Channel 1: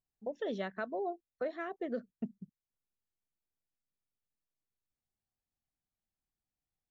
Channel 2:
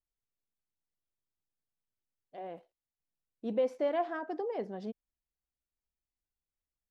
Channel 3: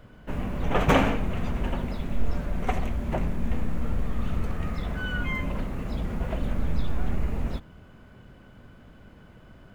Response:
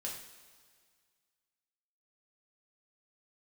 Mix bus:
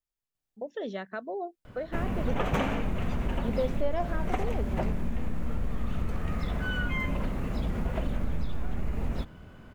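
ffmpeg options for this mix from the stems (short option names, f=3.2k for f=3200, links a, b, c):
-filter_complex "[0:a]adelay=350,volume=1.5dB[a];[1:a]volume=-0.5dB[b];[2:a]acompressor=threshold=-25dB:ratio=6,adelay=1650,volume=1dB[c];[a][b][c]amix=inputs=3:normalize=0"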